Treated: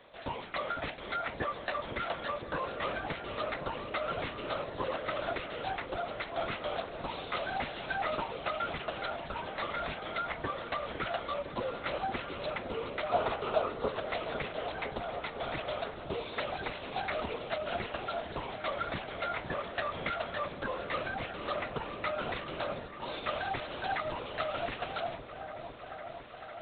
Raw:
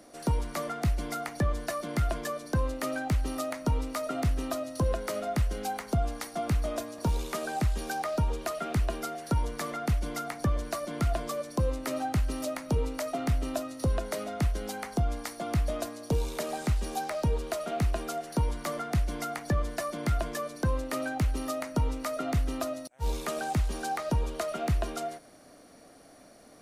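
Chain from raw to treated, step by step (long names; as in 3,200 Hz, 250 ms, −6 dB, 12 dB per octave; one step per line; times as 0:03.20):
high-pass filter 150 Hz 12 dB per octave
linear-prediction vocoder at 8 kHz whisper
gain on a spectral selection 0:13.10–0:13.88, 360–1,500 Hz +8 dB
spectral tilt +3.5 dB per octave
echo whose low-pass opens from repeat to repeat 506 ms, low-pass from 400 Hz, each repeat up 1 octave, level −6 dB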